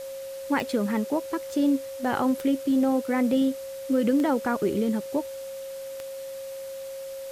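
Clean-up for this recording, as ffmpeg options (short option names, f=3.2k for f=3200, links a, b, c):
-af "adeclick=t=4,bandreject=f=540:w=30,afftdn=nr=30:nf=-37"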